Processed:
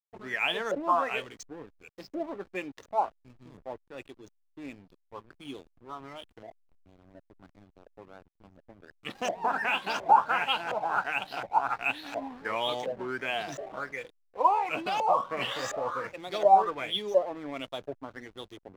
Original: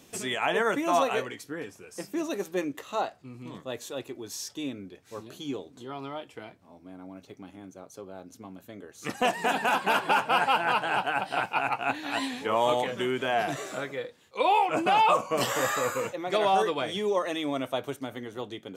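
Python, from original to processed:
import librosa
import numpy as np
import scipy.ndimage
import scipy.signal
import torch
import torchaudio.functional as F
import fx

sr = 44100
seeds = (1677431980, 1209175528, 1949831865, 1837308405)

y = fx.filter_lfo_lowpass(x, sr, shape='saw_up', hz=1.4, low_hz=540.0, high_hz=6700.0, q=6.4)
y = fx.backlash(y, sr, play_db=-34.5)
y = y * librosa.db_to_amplitude(-8.0)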